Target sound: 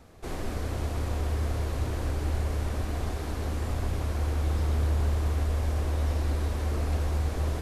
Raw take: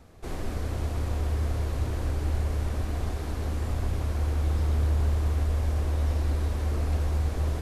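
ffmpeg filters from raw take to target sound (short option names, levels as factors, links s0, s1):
-af "lowshelf=f=180:g=-3.5,volume=1.19"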